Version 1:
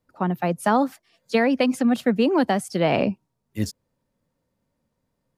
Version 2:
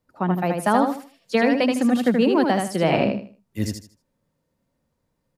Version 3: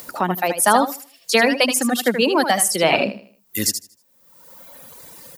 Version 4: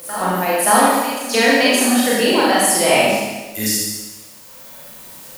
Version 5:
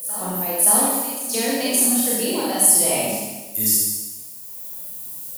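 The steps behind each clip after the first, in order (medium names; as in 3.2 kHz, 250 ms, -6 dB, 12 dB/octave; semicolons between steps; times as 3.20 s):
feedback delay 78 ms, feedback 27%, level -4.5 dB
reverb removal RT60 1.3 s; RIAA curve recording; upward compressor, threshold -25 dBFS; trim +6 dB
reverse echo 571 ms -13 dB; word length cut 8-bit, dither triangular; Schroeder reverb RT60 1.2 s, combs from 29 ms, DRR -7 dB; trim -4.5 dB
FFT filter 120 Hz 0 dB, 920 Hz -7 dB, 1.6 kHz -13 dB, 6.4 kHz +1 dB, 11 kHz +10 dB; trim -4 dB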